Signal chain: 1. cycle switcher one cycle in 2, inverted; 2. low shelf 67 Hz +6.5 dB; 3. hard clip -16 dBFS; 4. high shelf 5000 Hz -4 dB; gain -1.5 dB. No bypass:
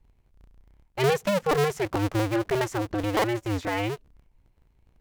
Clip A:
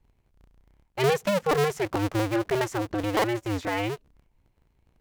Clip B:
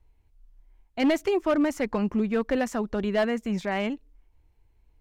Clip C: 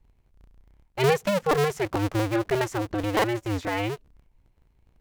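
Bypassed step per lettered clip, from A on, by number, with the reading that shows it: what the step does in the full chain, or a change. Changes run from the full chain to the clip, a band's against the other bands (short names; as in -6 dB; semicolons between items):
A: 2, 125 Hz band -1.5 dB; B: 1, 250 Hz band +8.0 dB; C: 3, distortion -17 dB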